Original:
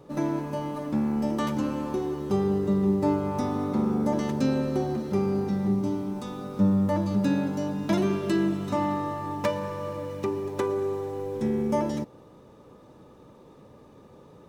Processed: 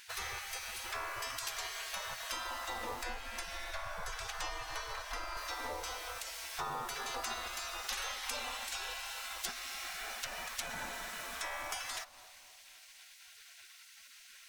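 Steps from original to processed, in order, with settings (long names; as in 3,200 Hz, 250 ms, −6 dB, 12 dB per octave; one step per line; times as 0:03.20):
gate on every frequency bin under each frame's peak −30 dB weak
0:03.03–0:05.37: spectral tilt −2 dB per octave
downward compressor 2.5 to 1, threshold −58 dBFS, peak gain reduction 11.5 dB
bucket-brigade delay 262 ms, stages 2,048, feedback 54%, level −14 dB
level +17 dB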